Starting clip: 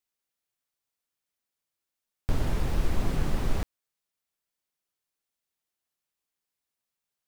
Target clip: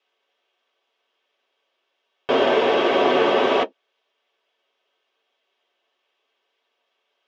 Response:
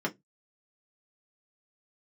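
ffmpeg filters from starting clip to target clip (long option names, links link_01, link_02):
-filter_complex "[0:a]highpass=230,equalizer=frequency=310:width_type=q:width=4:gain=-7,equalizer=frequency=450:width_type=q:width=4:gain=4,equalizer=frequency=3100:width_type=q:width=4:gain=8,lowpass=frequency=6000:width=0.5412,lowpass=frequency=6000:width=1.3066,asplit=2[link_01][link_02];[link_02]highpass=frequency=720:poles=1,volume=20dB,asoftclip=type=tanh:threshold=-13.5dB[link_03];[link_01][link_03]amix=inputs=2:normalize=0,lowpass=frequency=1600:poles=1,volume=-6dB[link_04];[1:a]atrim=start_sample=2205,asetrate=79380,aresample=44100[link_05];[link_04][link_05]afir=irnorm=-1:irlink=0,volume=5.5dB"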